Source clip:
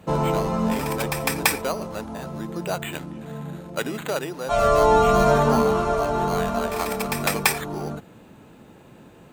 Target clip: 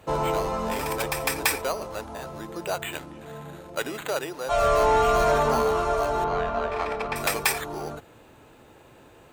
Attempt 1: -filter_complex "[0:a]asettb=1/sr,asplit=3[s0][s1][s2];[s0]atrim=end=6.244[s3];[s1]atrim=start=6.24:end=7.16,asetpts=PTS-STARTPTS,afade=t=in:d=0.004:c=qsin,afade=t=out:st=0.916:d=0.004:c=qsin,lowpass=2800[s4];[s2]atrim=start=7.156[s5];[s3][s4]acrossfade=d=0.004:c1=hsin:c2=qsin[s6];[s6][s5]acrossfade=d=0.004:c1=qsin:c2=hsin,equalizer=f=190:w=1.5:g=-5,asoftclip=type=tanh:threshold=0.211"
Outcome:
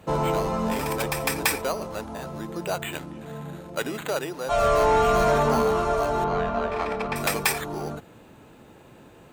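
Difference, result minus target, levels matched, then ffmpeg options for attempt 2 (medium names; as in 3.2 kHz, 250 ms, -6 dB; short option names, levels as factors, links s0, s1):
250 Hz band +4.0 dB
-filter_complex "[0:a]asettb=1/sr,asplit=3[s0][s1][s2];[s0]atrim=end=6.244[s3];[s1]atrim=start=6.24:end=7.16,asetpts=PTS-STARTPTS,afade=t=in:d=0.004:c=qsin,afade=t=out:st=0.916:d=0.004:c=qsin,lowpass=2800[s4];[s2]atrim=start=7.156[s5];[s3][s4]acrossfade=d=0.004:c1=hsin:c2=qsin[s6];[s6][s5]acrossfade=d=0.004:c1=qsin:c2=hsin,equalizer=f=190:w=1.5:g=-13.5,asoftclip=type=tanh:threshold=0.211"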